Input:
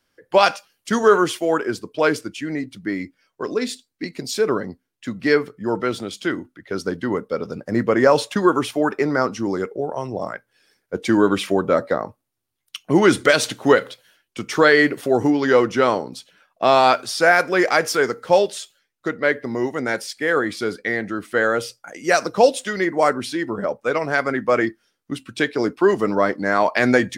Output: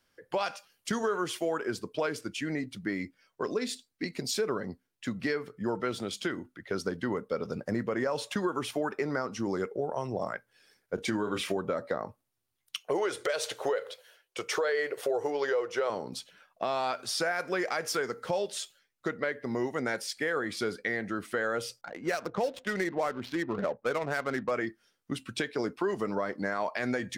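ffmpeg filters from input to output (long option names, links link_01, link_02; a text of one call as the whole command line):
ffmpeg -i in.wav -filter_complex "[0:a]asettb=1/sr,asplit=3[link_01][link_02][link_03];[link_01]atrim=end=10.954[link_04];[link_02]atrim=start=10.95:end=11.57,asetpts=PTS-STARTPTS,afade=type=in:duration=0.004:curve=qsin,afade=type=out:start_time=0.616:duration=0.004:curve=qsin,asplit=2[link_05][link_06];[link_06]adelay=28,volume=-7.5dB[link_07];[link_05][link_07]amix=inputs=2:normalize=0,atrim=end_sample=27342[link_08];[link_03]atrim=start=11.566[link_09];[link_04][link_08]acrossfade=duration=0.004:curve1=hsin:curve2=qsin[link_10];[link_10][link_09]acrossfade=duration=0.004:curve1=qsin:curve2=hsin,asettb=1/sr,asplit=3[link_11][link_12][link_13];[link_11]atrim=end=12.794[link_14];[link_12]atrim=start=12.79:end=15.9,asetpts=PTS-STARTPTS,afade=type=in:duration=0.004:curve=qsin,afade=type=out:start_time=3.106:duration=0.004:curve=qsin,lowshelf=frequency=330:width_type=q:width=3:gain=-11.5[link_15];[link_13]atrim=start=15.896[link_16];[link_14][link_15]acrossfade=duration=0.004:curve1=hsin:curve2=qsin[link_17];[link_17][link_16]acrossfade=duration=0.004:curve1=qsin:curve2=hsin,asettb=1/sr,asplit=3[link_18][link_19][link_20];[link_18]atrim=end=21.814[link_21];[link_19]atrim=start=21.81:end=24.51,asetpts=PTS-STARTPTS,afade=type=in:duration=0.004:curve=qsin,afade=type=out:start_time=2.696:duration=0.004:curve=qsin,adynamicsmooth=sensitivity=3.5:basefreq=860[link_22];[link_20]atrim=start=24.506[link_23];[link_21][link_22]acrossfade=duration=0.004:curve1=hsin:curve2=qsin[link_24];[link_24][link_23]acrossfade=duration=0.004:curve1=qsin:curve2=hsin,alimiter=limit=-12dB:level=0:latency=1:release=273,equalizer=frequency=300:width=3.7:gain=-3.5,acompressor=threshold=-28dB:ratio=2,volume=-2.5dB" out.wav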